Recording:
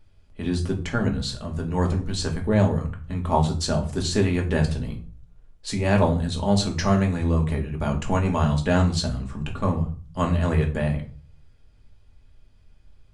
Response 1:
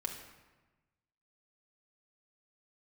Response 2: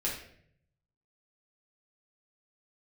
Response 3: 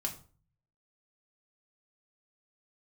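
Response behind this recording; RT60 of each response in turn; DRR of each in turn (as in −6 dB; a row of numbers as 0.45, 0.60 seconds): 3; 1.2, 0.65, 0.40 seconds; 2.0, −5.0, 1.0 decibels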